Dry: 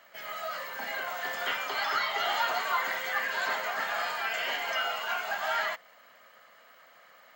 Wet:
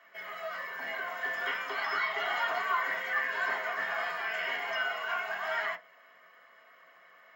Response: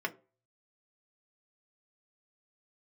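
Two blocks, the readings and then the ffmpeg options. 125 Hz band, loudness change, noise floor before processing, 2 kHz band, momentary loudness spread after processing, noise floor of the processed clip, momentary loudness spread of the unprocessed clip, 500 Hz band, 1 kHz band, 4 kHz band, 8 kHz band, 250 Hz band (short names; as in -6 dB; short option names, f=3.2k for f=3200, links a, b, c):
n/a, -1.5 dB, -57 dBFS, 0.0 dB, 7 LU, -59 dBFS, 8 LU, -1.5 dB, -2.5 dB, -6.0 dB, under -10 dB, -2.5 dB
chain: -filter_complex "[1:a]atrim=start_sample=2205,atrim=end_sample=3087[a];[0:a][a]afir=irnorm=-1:irlink=0,volume=-6.5dB"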